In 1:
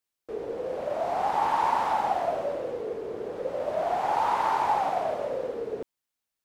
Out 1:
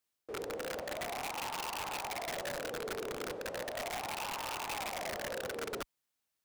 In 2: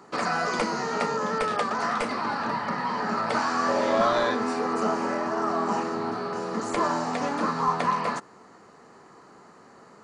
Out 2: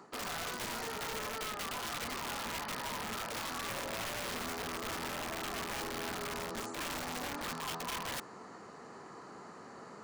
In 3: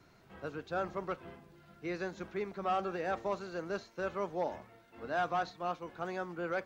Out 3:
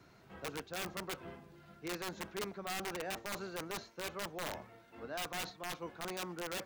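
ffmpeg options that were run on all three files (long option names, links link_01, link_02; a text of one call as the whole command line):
ffmpeg -i in.wav -af "highpass=41,areverse,acompressor=threshold=-37dB:ratio=8,areverse,aeval=exprs='(mod(50.1*val(0)+1,2)-1)/50.1':channel_layout=same,volume=1dB" out.wav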